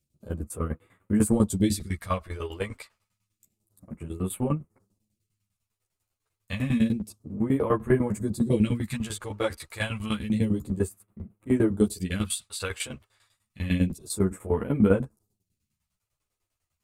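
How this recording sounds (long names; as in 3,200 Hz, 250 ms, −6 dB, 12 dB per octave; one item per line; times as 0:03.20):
phaser sweep stages 2, 0.29 Hz, lowest notch 180–4,900 Hz
tremolo saw down 10 Hz, depth 90%
a shimmering, thickened sound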